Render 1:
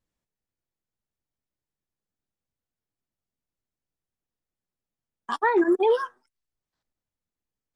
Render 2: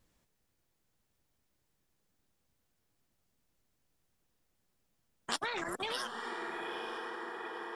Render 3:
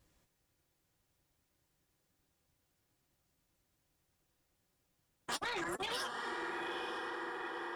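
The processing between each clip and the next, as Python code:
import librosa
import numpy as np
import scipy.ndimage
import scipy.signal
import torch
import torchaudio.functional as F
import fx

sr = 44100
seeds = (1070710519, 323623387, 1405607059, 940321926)

y1 = fx.echo_diffused(x, sr, ms=932, feedback_pct=46, wet_db=-15)
y1 = fx.spectral_comp(y1, sr, ratio=4.0)
y1 = F.gain(torch.from_numpy(y1), -8.5).numpy()
y2 = fx.notch_comb(y1, sr, f0_hz=220.0)
y2 = 10.0 ** (-35.0 / 20.0) * np.tanh(y2 / 10.0 ** (-35.0 / 20.0))
y2 = F.gain(torch.from_numpy(y2), 2.5).numpy()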